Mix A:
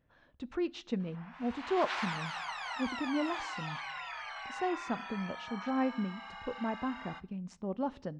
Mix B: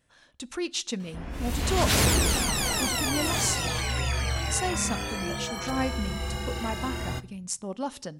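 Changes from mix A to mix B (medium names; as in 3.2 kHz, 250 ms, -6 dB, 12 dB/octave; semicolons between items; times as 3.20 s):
background: remove steep high-pass 820 Hz 36 dB/octave; master: remove tape spacing loss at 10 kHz 41 dB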